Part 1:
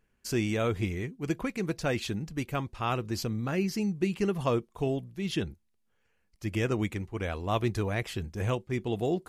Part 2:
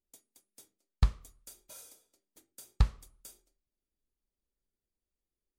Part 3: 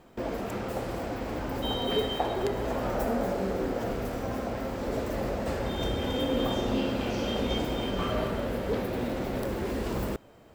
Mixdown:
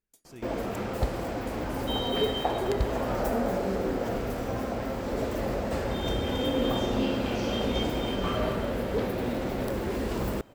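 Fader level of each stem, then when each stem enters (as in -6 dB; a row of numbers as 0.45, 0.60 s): -18.5, -4.0, +1.0 dB; 0.00, 0.00, 0.25 s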